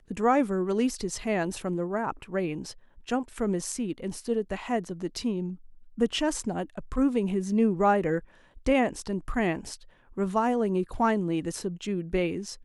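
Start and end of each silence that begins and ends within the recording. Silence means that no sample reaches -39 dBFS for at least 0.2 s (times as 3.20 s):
2.72–3.08 s
5.55–5.98 s
8.19–8.57 s
9.75–10.17 s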